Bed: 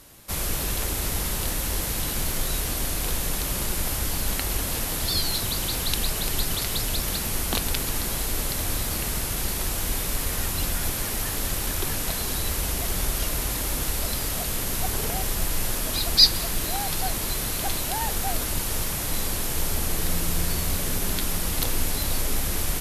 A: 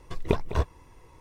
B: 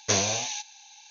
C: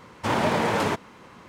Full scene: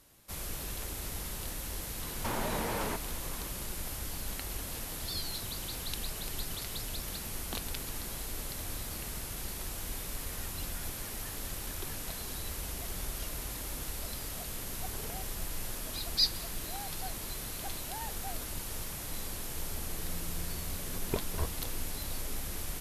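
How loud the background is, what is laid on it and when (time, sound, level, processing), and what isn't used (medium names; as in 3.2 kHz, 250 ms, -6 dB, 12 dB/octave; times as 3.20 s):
bed -12 dB
2.01 s: add C -1 dB + compression, threshold -31 dBFS
20.83 s: add A -9.5 dB
not used: B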